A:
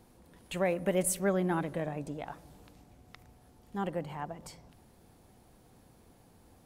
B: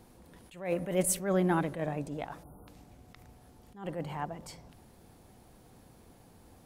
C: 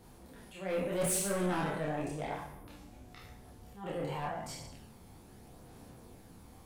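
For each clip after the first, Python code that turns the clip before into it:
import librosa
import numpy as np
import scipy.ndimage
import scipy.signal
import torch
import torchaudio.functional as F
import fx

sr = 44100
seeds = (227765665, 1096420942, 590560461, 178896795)

y1 = fx.spec_erase(x, sr, start_s=2.43, length_s=0.25, low_hz=1500.0, high_hz=9200.0)
y1 = fx.attack_slew(y1, sr, db_per_s=130.0)
y1 = y1 * librosa.db_to_amplitude(3.0)
y2 = fx.spec_trails(y1, sr, decay_s=0.73)
y2 = 10.0 ** (-28.0 / 20.0) * np.tanh(y2 / 10.0 ** (-28.0 / 20.0))
y2 = fx.chorus_voices(y2, sr, voices=2, hz=0.43, base_ms=29, depth_ms=2.6, mix_pct=50)
y2 = y2 * librosa.db_to_amplitude(3.0)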